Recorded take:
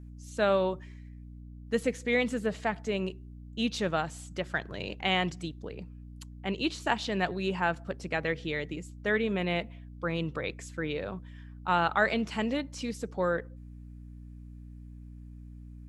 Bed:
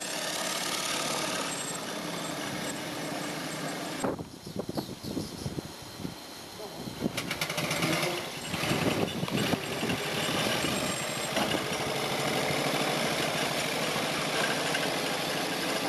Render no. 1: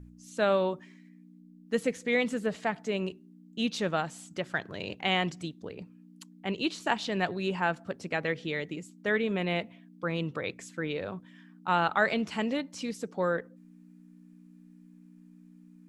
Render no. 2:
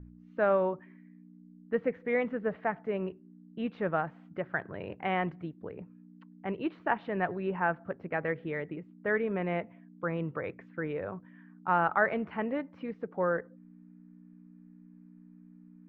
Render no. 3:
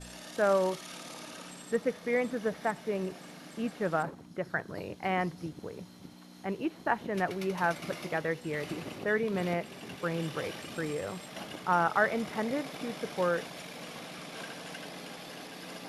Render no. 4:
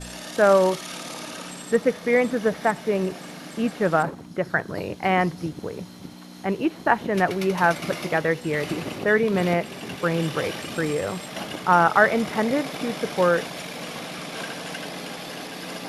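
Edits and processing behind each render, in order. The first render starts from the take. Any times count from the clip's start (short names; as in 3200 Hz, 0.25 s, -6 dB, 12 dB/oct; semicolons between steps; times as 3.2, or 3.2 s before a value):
de-hum 60 Hz, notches 2
LPF 1900 Hz 24 dB/oct; dynamic EQ 230 Hz, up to -4 dB, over -45 dBFS, Q 1.9
add bed -14 dB
gain +9.5 dB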